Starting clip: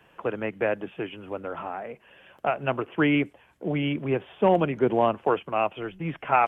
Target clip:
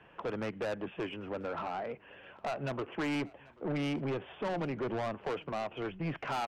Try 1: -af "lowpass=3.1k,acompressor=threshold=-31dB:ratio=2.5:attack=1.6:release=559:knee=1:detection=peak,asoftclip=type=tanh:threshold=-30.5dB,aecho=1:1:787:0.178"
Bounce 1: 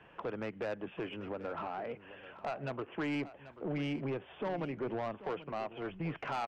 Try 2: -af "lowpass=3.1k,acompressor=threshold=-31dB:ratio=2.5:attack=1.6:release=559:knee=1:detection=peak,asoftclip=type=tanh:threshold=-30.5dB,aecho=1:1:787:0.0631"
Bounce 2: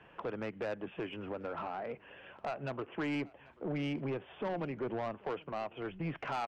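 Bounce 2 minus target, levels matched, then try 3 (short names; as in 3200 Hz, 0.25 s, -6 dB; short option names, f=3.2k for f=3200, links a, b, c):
compressor: peak gain reduction +5.5 dB
-af "lowpass=3.1k,acompressor=threshold=-22dB:ratio=2.5:attack=1.6:release=559:knee=1:detection=peak,asoftclip=type=tanh:threshold=-30.5dB,aecho=1:1:787:0.0631"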